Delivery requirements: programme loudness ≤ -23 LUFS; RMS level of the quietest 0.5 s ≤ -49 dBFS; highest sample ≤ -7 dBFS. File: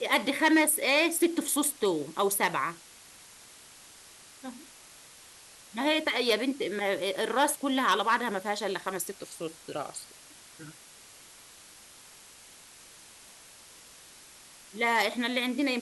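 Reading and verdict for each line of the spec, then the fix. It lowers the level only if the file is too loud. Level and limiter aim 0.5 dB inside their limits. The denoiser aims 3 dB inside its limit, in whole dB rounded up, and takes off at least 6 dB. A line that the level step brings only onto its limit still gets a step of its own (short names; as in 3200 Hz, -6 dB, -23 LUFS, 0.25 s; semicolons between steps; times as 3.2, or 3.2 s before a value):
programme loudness -27.5 LUFS: OK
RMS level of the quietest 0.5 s -52 dBFS: OK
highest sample -12.5 dBFS: OK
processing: none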